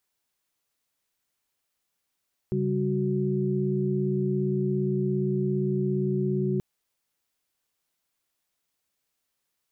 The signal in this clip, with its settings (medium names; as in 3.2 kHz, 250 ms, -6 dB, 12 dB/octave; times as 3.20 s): chord C#3/G3/F#4 sine, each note -27.5 dBFS 4.08 s